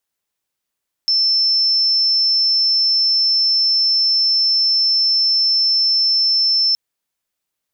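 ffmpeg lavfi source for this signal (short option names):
-f lavfi -i "sine=f=5320:d=5.67:r=44100,volume=5.56dB"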